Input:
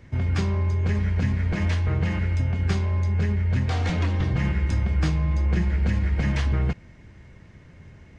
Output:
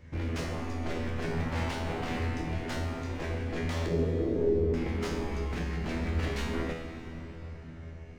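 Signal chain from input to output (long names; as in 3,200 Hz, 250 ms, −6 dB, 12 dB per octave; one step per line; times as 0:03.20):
0:01.30–0:02.19: sub-octave generator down 1 octave, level +3 dB
0:05.36–0:05.84: low-shelf EQ 180 Hz −8.5 dB
wave folding −24.5 dBFS
0:03.86–0:04.74: low-pass with resonance 430 Hz, resonance Q 4.9
tuned comb filter 82 Hz, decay 0.69 s, harmonics all, mix 90%
convolution reverb RT60 5.3 s, pre-delay 105 ms, DRR 8 dB
level +8 dB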